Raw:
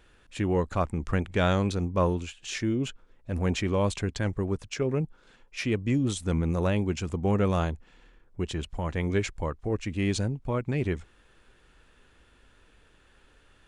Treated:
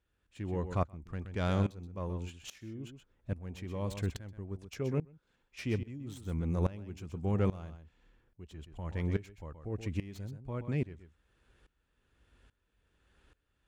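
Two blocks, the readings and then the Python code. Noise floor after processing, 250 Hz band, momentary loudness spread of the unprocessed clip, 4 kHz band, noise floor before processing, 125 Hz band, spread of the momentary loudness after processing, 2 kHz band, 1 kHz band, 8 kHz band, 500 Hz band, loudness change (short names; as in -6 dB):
-79 dBFS, -9.0 dB, 9 LU, -13.0 dB, -61 dBFS, -6.5 dB, 16 LU, -12.0 dB, -10.5 dB, -14.5 dB, -10.0 dB, -8.0 dB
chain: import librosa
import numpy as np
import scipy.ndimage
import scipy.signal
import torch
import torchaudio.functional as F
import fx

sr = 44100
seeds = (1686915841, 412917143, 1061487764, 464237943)

p1 = fx.tracing_dist(x, sr, depth_ms=0.041)
p2 = scipy.signal.sosfilt(scipy.signal.butter(2, 45.0, 'highpass', fs=sr, output='sos'), p1)
p3 = fx.low_shelf(p2, sr, hz=150.0, db=9.0)
p4 = p3 + fx.echo_single(p3, sr, ms=126, db=-11.5, dry=0)
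p5 = fx.tremolo_decay(p4, sr, direction='swelling', hz=1.2, depth_db=19)
y = p5 * librosa.db_to_amplitude(-6.0)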